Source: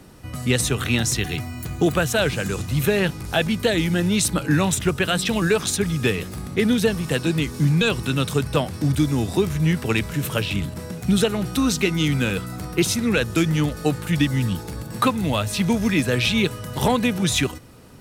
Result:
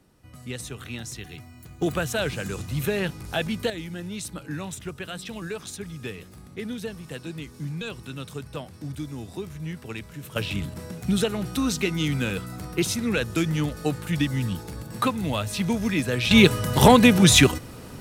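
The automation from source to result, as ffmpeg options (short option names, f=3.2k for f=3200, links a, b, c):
-af "asetnsamples=n=441:p=0,asendcmd='1.82 volume volume -6dB;3.7 volume volume -14dB;10.36 volume volume -4.5dB;16.31 volume volume 6dB',volume=-14.5dB"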